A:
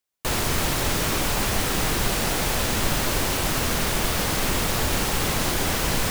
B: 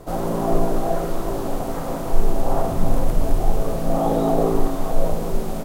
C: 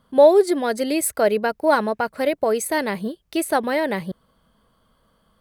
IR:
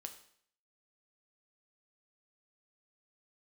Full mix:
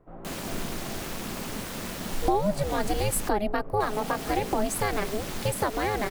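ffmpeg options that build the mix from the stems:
-filter_complex "[0:a]volume=0.335,asplit=3[s0][s1][s2];[s0]atrim=end=3.29,asetpts=PTS-STARTPTS,afade=t=out:st=3.286:d=0.004:c=hsin[s3];[s1]atrim=start=3.29:end=3.8,asetpts=PTS-STARTPTS,volume=0[s4];[s2]atrim=start=3.8,asetpts=PTS-STARTPTS,afade=t=in:d=0.004:c=hsin[s5];[s3][s4][s5]concat=n=3:v=0:a=1,asplit=2[s6][s7];[s7]volume=0.224[s8];[1:a]lowpass=f=2200:w=0.5412,lowpass=f=2200:w=1.3066,equalizer=f=680:w=1.5:g=-3.5,volume=0.133[s9];[2:a]adelay=2100,volume=1.12[s10];[s6][s10]amix=inputs=2:normalize=0,aeval=exprs='val(0)*sin(2*PI*210*n/s)':c=same,acompressor=threshold=0.0708:ratio=4,volume=1[s11];[3:a]atrim=start_sample=2205[s12];[s8][s12]afir=irnorm=-1:irlink=0[s13];[s9][s11][s13]amix=inputs=3:normalize=0"

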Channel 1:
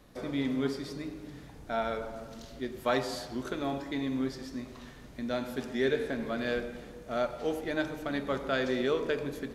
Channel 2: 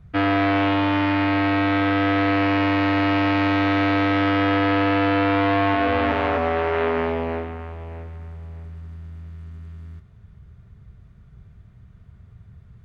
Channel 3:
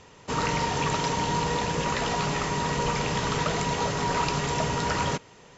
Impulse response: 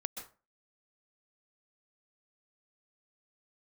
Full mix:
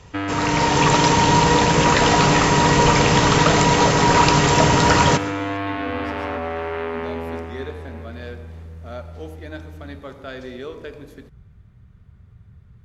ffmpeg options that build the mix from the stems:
-filter_complex "[0:a]adelay=1750,volume=0.596[s0];[1:a]bandreject=f=670:w=12,acompressor=threshold=0.0631:ratio=2,volume=0.891[s1];[2:a]dynaudnorm=f=410:g=3:m=3.35,volume=0.891,asplit=2[s2][s3];[s3]volume=0.422[s4];[3:a]atrim=start_sample=2205[s5];[s4][s5]afir=irnorm=-1:irlink=0[s6];[s0][s1][s2][s6]amix=inputs=4:normalize=0"

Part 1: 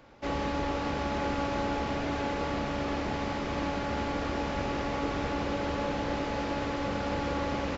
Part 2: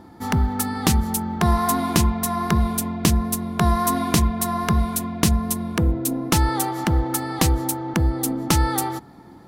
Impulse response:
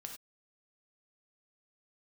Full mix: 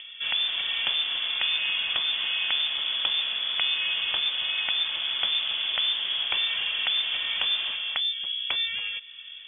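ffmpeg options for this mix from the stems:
-filter_complex "[0:a]volume=0.75,asplit=2[s0][s1];[s1]volume=0.631[s2];[1:a]acompressor=threshold=0.0224:ratio=2.5,volume=1.19,asplit=2[s3][s4];[s4]volume=0.158[s5];[2:a]atrim=start_sample=2205[s6];[s5][s6]afir=irnorm=-1:irlink=0[s7];[s2]aecho=0:1:236:1[s8];[s0][s3][s7][s8]amix=inputs=4:normalize=0,acompressor=mode=upward:threshold=0.00794:ratio=2.5,lowpass=f=3100:t=q:w=0.5098,lowpass=f=3100:t=q:w=0.6013,lowpass=f=3100:t=q:w=0.9,lowpass=f=3100:t=q:w=2.563,afreqshift=-3600"

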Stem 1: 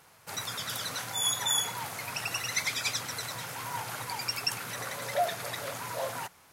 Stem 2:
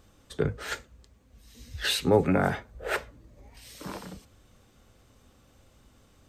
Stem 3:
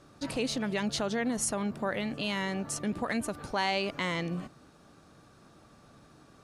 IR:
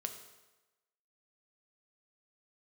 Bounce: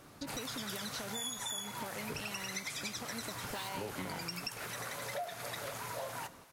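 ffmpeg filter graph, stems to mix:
-filter_complex "[0:a]volume=0.501,asplit=2[s0][s1];[s1]volume=0.531[s2];[1:a]acrusher=bits=4:mix=0:aa=0.5,adelay=1700,volume=0.188[s3];[2:a]acompressor=threshold=0.0141:ratio=6,volume=0.891[s4];[3:a]atrim=start_sample=2205[s5];[s2][s5]afir=irnorm=-1:irlink=0[s6];[s0][s3][s4][s6]amix=inputs=4:normalize=0,acompressor=threshold=0.0141:ratio=6"

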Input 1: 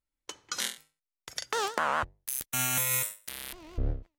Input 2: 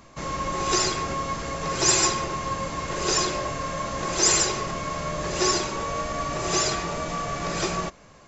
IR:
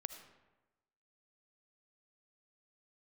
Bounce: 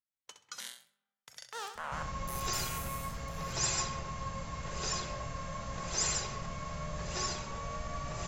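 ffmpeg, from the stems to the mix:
-filter_complex "[0:a]alimiter=limit=0.112:level=0:latency=1:release=32,highpass=110,volume=0.266,afade=t=out:st=2.6:d=0.58:silence=0.316228,asplit=3[s0][s1][s2];[s1]volume=0.398[s3];[s2]volume=0.447[s4];[1:a]lowshelf=f=180:g=9.5,adelay=1750,volume=0.251[s5];[2:a]atrim=start_sample=2205[s6];[s3][s6]afir=irnorm=-1:irlink=0[s7];[s4]aecho=0:1:65|130|195|260:1|0.23|0.0529|0.0122[s8];[s0][s5][s7][s8]amix=inputs=4:normalize=0,equalizer=f=340:w=2.4:g=-12.5"

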